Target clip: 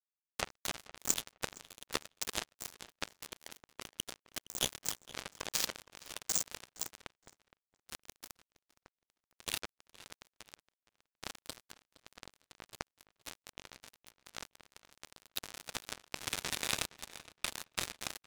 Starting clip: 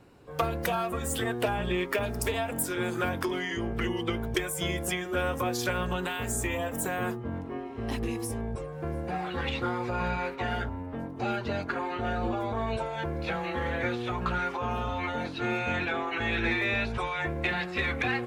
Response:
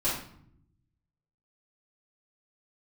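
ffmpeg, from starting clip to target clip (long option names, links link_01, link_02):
-filter_complex "[0:a]aexciter=amount=8.3:drive=2.8:freq=3200,bandreject=frequency=60:width_type=h:width=6,bandreject=frequency=120:width_type=h:width=6,bandreject=frequency=180:width_type=h:width=6,bandreject=frequency=240:width_type=h:width=6,bandreject=frequency=300:width_type=h:width=6,bandreject=frequency=360:width_type=h:width=6,bandreject=frequency=420:width_type=h:width=6,bandreject=frequency=480:width_type=h:width=6,aresample=16000,asoftclip=type=hard:threshold=-24.5dB,aresample=44100,afftfilt=real='hypot(re,im)*cos(2*PI*random(0))':imag='hypot(re,im)*sin(2*PI*random(1))':win_size=512:overlap=0.75,acrusher=bits=3:mix=0:aa=0.5,asplit=2[link_01][link_02];[link_02]adelay=466,lowpass=frequency=4600:poles=1,volume=-18dB,asplit=2[link_03][link_04];[link_04]adelay=466,lowpass=frequency=4600:poles=1,volume=0.18[link_05];[link_01][link_03][link_05]amix=inputs=3:normalize=0,volume=10dB"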